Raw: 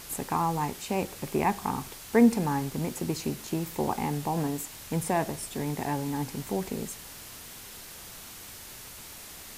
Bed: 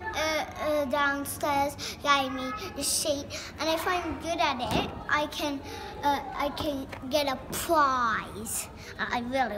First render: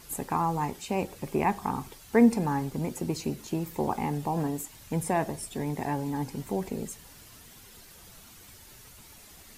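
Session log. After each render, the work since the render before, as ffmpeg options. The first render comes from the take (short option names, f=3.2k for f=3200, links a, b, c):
-af "afftdn=nr=9:nf=-45"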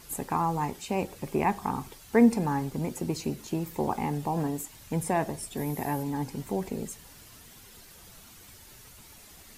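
-filter_complex "[0:a]asettb=1/sr,asplit=3[a][b][c];[a]atrim=end=5.574[d];[b]atrim=start=5.57:end=6.03,asetpts=PTS-STARTPTS,afade=t=in:d=0.004:c=qsin,afade=t=out:st=0.456:d=0.004:c=qsin,equalizer=f=12k:t=o:w=0.46:g=14.5[e];[c]atrim=start=6.026[f];[d][e]acrossfade=d=0.004:c1=hsin:c2=qsin[g];[g][f]acrossfade=d=0.004:c1=qsin:c2=hsin"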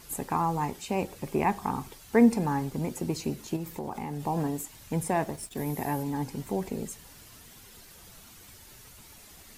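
-filter_complex "[0:a]asettb=1/sr,asplit=3[a][b][c];[a]atrim=end=3.564[d];[b]atrim=start=3.56:end=4.27,asetpts=PTS-STARTPTS,afade=t=in:d=0.004:c=qsin,afade=t=out:st=0.706:d=0.004:c=qsin,acompressor=threshold=-30dB:ratio=10:attack=3.2:release=140:knee=1:detection=peak[e];[c]atrim=start=4.266[f];[d][e]acrossfade=d=0.004:c1=hsin:c2=qsin[g];[g][f]acrossfade=d=0.004:c1=qsin:c2=hsin,asettb=1/sr,asplit=3[h][i][j];[h]atrim=end=5.074[k];[i]atrim=start=5.07:end=5.66,asetpts=PTS-STARTPTS,afade=t=in:d=0.004:c=qsin,afade=t=out:st=0.586:d=0.004:c=qsin,aeval=exprs='sgn(val(0))*max(abs(val(0))-0.00299,0)':c=same[l];[j]atrim=start=5.656[m];[k][l]acrossfade=d=0.004:c1=hsin:c2=qsin[n];[n][m]acrossfade=d=0.004:c1=qsin:c2=hsin"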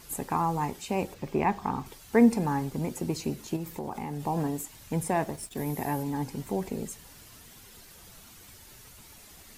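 -filter_complex "[0:a]asettb=1/sr,asplit=3[a][b][c];[a]atrim=end=1.144[d];[b]atrim=start=1.14:end=1.86,asetpts=PTS-STARTPTS,afade=t=in:d=0.004:c=qsin,afade=t=out:st=0.716:d=0.004:c=qsin,equalizer=f=11k:t=o:w=0.94:g=-12.5[e];[c]atrim=start=1.856[f];[d][e]acrossfade=d=0.004:c1=hsin:c2=qsin[g];[g][f]acrossfade=d=0.004:c1=qsin:c2=hsin"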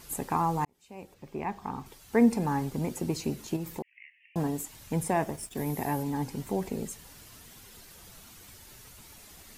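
-filter_complex "[0:a]asettb=1/sr,asplit=3[a][b][c];[a]atrim=end=3.824[d];[b]atrim=start=3.82:end=4.36,asetpts=PTS-STARTPTS,afade=t=in:d=0.004:c=qsin,afade=t=out:st=0.536:d=0.004:c=qsin,asuperpass=centerf=2300:order=12:qfactor=2.2[e];[c]atrim=start=4.356[f];[d][e]acrossfade=d=0.004:c1=hsin:c2=qsin[g];[g][f]acrossfade=d=0.004:c1=qsin:c2=hsin,asettb=1/sr,asplit=3[h][i][j];[h]atrim=end=5.134[k];[i]atrim=start=5.13:end=5.54,asetpts=PTS-STARTPTS,afade=t=in:d=0.004:c=qsin,afade=t=out:st=0.406:d=0.004:c=qsin,equalizer=f=4.1k:w=7:g=-7.5[l];[j]atrim=start=5.536[m];[k][l]acrossfade=d=0.004:c1=hsin:c2=qsin[n];[n][m]acrossfade=d=0.004:c1=qsin:c2=hsin,asplit=2[o][p];[o]atrim=end=0.65,asetpts=PTS-STARTPTS,afade=t=out:st=0.646:d=0.004:c=hsin[q];[p]atrim=start=0.65,asetpts=PTS-STARTPTS,afade=t=in:d=1.99[r];[q][r]concat=n=2:v=0:a=1"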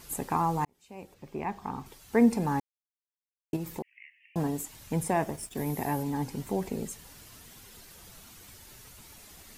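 -filter_complex "[0:a]asplit=3[a][b][c];[a]atrim=end=2.6,asetpts=PTS-STARTPTS,afade=t=out:st=2.596:d=0.004:c=hsin[d];[b]atrim=start=2.6:end=3.53,asetpts=PTS-STARTPTS,volume=0[e];[c]atrim=start=3.53,asetpts=PTS-STARTPTS,afade=t=in:d=0.004:c=hsin[f];[d][e][f]concat=n=3:v=0:a=1"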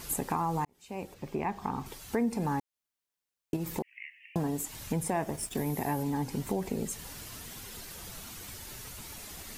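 -filter_complex "[0:a]asplit=2[a][b];[b]alimiter=limit=-21.5dB:level=0:latency=1:release=97,volume=1dB[c];[a][c]amix=inputs=2:normalize=0,acompressor=threshold=-31dB:ratio=2.5"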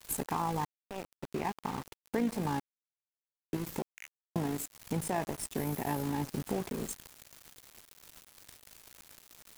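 -af "aeval=exprs='val(0)*gte(abs(val(0)),0.015)':c=same,tremolo=f=55:d=0.462"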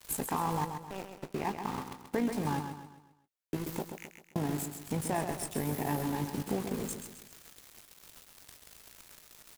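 -filter_complex "[0:a]asplit=2[a][b];[b]adelay=20,volume=-12.5dB[c];[a][c]amix=inputs=2:normalize=0,aecho=1:1:132|264|396|528|660:0.422|0.177|0.0744|0.0312|0.0131"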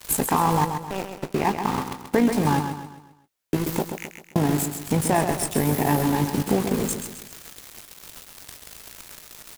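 -af "volume=11.5dB"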